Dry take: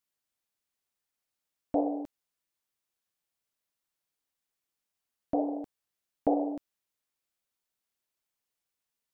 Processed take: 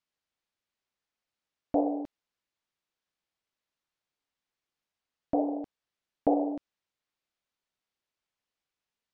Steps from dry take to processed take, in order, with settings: low-pass 4.9 kHz; trim +1.5 dB

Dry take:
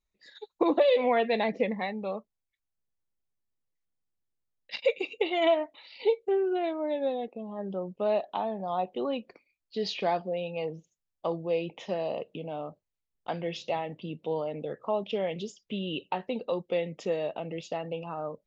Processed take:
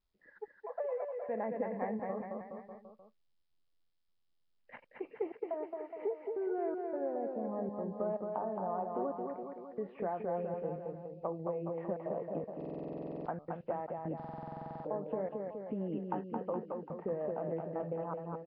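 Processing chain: steep low-pass 1.7 kHz 36 dB/octave; compression 4:1, threshold -35 dBFS, peak gain reduction 14.5 dB; 0.56–1.29 s: rippled Chebyshev high-pass 460 Hz, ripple 3 dB; trance gate "xxxxxx.xxxx..xx" 158 bpm -60 dB; bouncing-ball echo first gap 220 ms, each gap 0.9×, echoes 5; buffer glitch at 12.56/14.15 s, samples 2048, times 14; Nellymoser 22 kbps 11.025 kHz

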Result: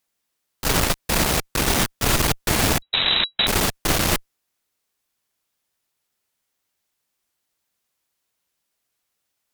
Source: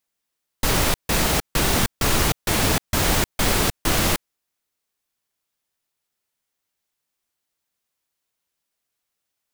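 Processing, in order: one-sided clip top -30 dBFS; 2.82–3.47 s: frequency inversion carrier 3.9 kHz; trim +3.5 dB

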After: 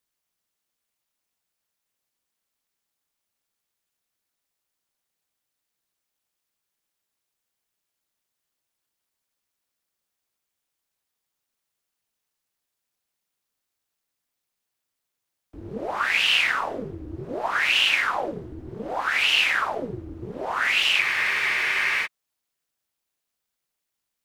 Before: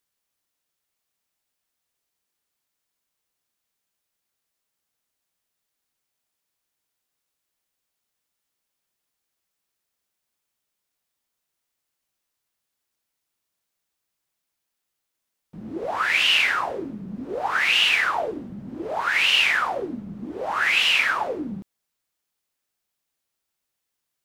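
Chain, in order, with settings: ring modulator 120 Hz; spectral freeze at 21.03 s, 1.02 s; trim +1.5 dB

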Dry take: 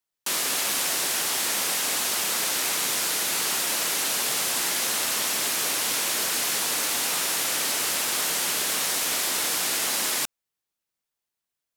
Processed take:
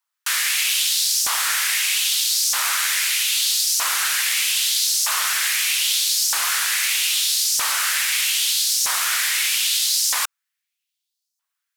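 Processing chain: LFO high-pass saw up 0.79 Hz 1–5.8 kHz; trim +3.5 dB

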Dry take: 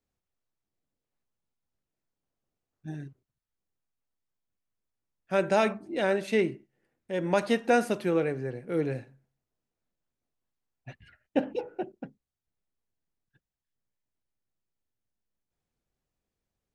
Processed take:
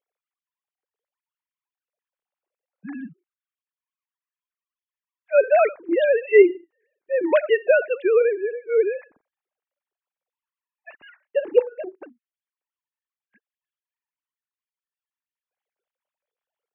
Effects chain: formants replaced by sine waves; trim +8.5 dB

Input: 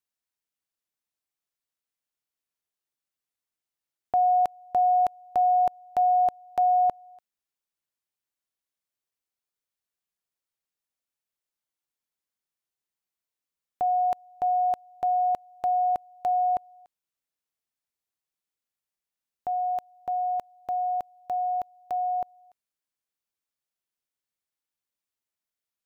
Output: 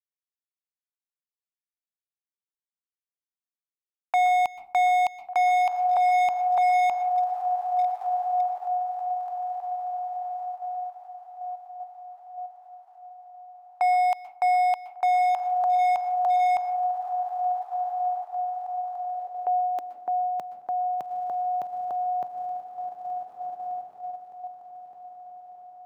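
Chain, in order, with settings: expander -46 dBFS; bass shelf 270 Hz -9 dB; echo that smears into a reverb 1556 ms, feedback 46%, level -7 dB; high-pass sweep 810 Hz -> 140 Hz, 18.91–20.48 s; hard clipper -19.5 dBFS, distortion -11 dB; in parallel at -0.5 dB: level held to a coarse grid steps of 20 dB; on the sum: reverberation RT60 0.40 s, pre-delay 117 ms, DRR 13.5 dB

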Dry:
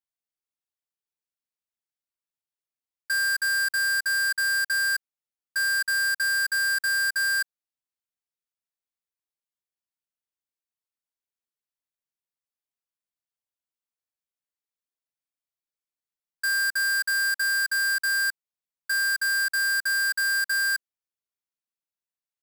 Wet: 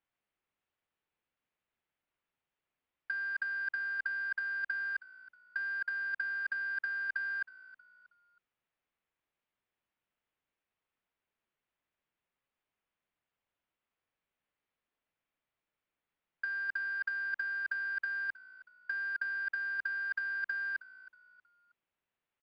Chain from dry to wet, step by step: low-pass 2.9 kHz 24 dB/octave; compressor with a negative ratio -32 dBFS, ratio -0.5; on a send: frequency-shifting echo 318 ms, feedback 39%, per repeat -58 Hz, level -19 dB

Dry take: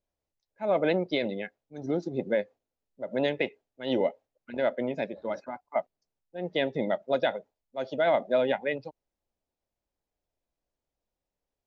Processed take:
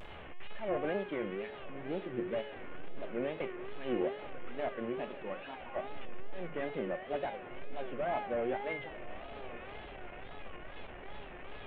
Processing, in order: one-bit delta coder 16 kbps, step -34 dBFS; feedback comb 390 Hz, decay 0.87 s, mix 90%; on a send: echo that smears into a reverb 1051 ms, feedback 53%, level -15 dB; on the sum: wow and flutter 150 cents; trim +10 dB

